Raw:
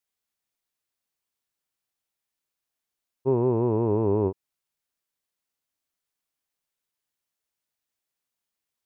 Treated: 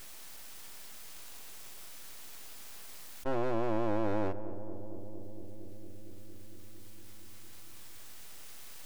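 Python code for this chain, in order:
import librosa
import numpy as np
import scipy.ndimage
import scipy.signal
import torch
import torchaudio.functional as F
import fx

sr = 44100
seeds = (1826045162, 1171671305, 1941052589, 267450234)

p1 = scipy.signal.sosfilt(scipy.signal.butter(2, 96.0, 'highpass', fs=sr, output='sos'), x)
p2 = np.clip(p1, -10.0 ** (-23.0 / 20.0), 10.0 ** (-23.0 / 20.0))
p3 = p1 + (p2 * librosa.db_to_amplitude(-7.0))
p4 = fx.fixed_phaser(p3, sr, hz=1200.0, stages=6)
p5 = np.abs(p4)
p6 = p5 + fx.echo_filtered(p5, sr, ms=229, feedback_pct=72, hz=880.0, wet_db=-21, dry=0)
p7 = fx.env_flatten(p6, sr, amount_pct=70)
y = p7 * librosa.db_to_amplitude(-2.0)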